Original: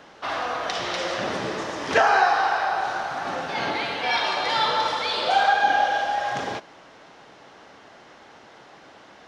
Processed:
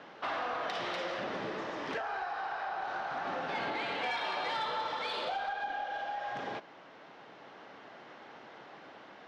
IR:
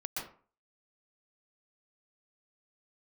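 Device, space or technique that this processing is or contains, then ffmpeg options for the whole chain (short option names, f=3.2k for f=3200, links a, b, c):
AM radio: -af "highpass=130,lowpass=3.6k,acompressor=threshold=-28dB:ratio=6,asoftclip=type=tanh:threshold=-22.5dB,tremolo=f=0.24:d=0.29,volume=-2.5dB"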